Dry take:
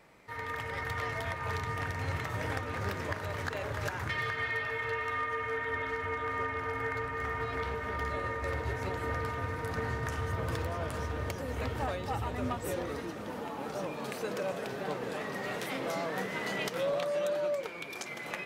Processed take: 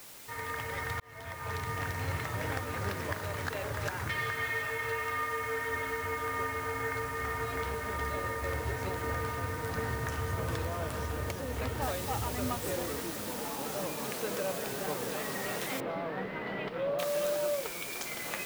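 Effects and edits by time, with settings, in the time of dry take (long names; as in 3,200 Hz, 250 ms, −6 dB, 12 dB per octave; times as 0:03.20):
0:01.00–0:01.90: fade in equal-power
0:11.82: noise floor change −50 dB −42 dB
0:15.80–0:16.99: high-frequency loss of the air 420 metres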